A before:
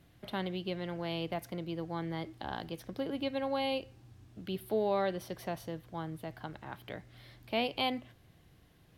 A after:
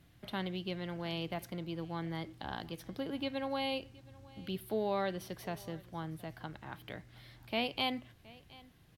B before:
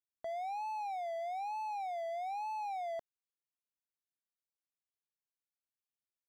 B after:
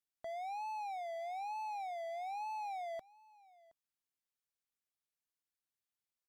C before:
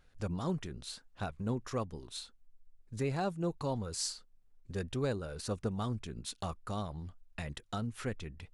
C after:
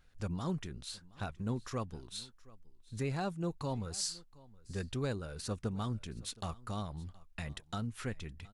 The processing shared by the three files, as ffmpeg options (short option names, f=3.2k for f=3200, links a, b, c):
-filter_complex "[0:a]equalizer=f=520:t=o:w=1.7:g=-4,asplit=2[a][b];[b]aecho=0:1:720:0.075[c];[a][c]amix=inputs=2:normalize=0" -ar 48000 -c:a aac -b:a 128k